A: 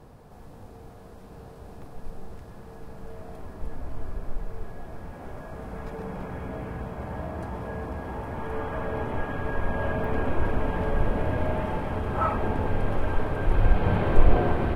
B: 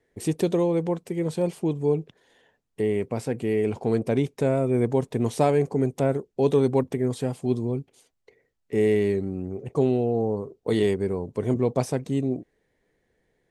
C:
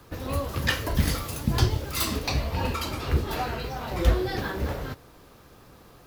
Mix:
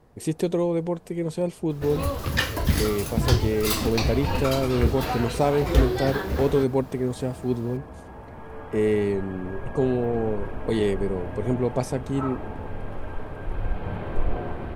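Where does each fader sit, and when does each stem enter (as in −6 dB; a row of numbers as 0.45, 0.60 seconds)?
−7.5, −1.0, +1.5 decibels; 0.00, 0.00, 1.70 seconds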